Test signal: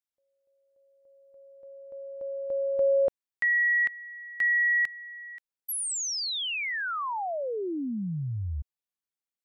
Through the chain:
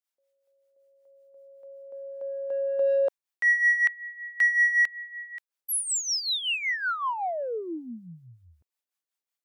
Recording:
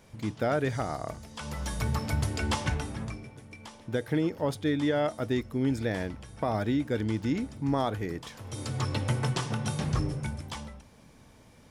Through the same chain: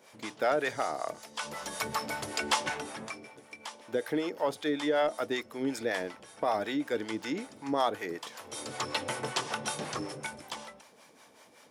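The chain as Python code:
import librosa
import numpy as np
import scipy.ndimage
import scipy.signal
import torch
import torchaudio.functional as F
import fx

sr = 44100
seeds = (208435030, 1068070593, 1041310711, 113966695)

p1 = scipy.signal.sosfilt(scipy.signal.butter(2, 430.0, 'highpass', fs=sr, output='sos'), x)
p2 = 10.0 ** (-30.5 / 20.0) * np.tanh(p1 / 10.0 ** (-30.5 / 20.0))
p3 = p1 + (p2 * 10.0 ** (-10.0 / 20.0))
p4 = fx.harmonic_tremolo(p3, sr, hz=5.3, depth_pct=70, crossover_hz=570.0)
y = p4 * 10.0 ** (4.0 / 20.0)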